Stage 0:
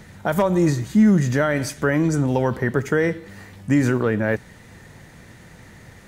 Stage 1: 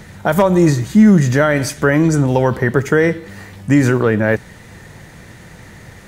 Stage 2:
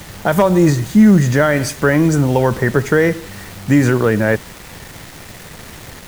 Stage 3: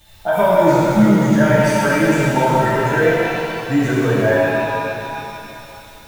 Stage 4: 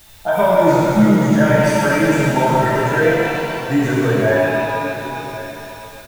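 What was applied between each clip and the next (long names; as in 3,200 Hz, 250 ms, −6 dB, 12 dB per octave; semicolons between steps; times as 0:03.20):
parametric band 250 Hz −3.5 dB 0.21 octaves; level +6.5 dB
bit reduction 6 bits; background noise pink −39 dBFS
spectral dynamics exaggerated over time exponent 1.5; hollow resonant body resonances 640/900/1,600/3,600 Hz, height 12 dB, ringing for 50 ms; reverb with rising layers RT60 2.9 s, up +7 semitones, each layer −8 dB, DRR −8 dB; level −9.5 dB
bit-depth reduction 8 bits, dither triangular; single-tap delay 1,087 ms −16 dB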